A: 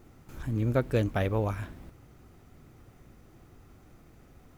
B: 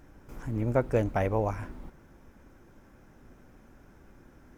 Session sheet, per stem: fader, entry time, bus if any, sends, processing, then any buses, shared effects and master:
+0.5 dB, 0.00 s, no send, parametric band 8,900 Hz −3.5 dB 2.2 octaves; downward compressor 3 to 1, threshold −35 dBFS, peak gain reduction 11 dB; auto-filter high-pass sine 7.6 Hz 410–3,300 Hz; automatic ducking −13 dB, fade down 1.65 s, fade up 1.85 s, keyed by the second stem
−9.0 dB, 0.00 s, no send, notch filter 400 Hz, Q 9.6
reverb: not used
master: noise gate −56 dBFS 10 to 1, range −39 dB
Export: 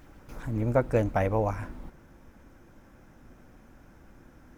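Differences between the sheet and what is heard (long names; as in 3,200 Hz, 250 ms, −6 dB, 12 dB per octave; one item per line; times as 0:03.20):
stem B −9.0 dB → +1.5 dB
master: missing noise gate −56 dBFS 10 to 1, range −39 dB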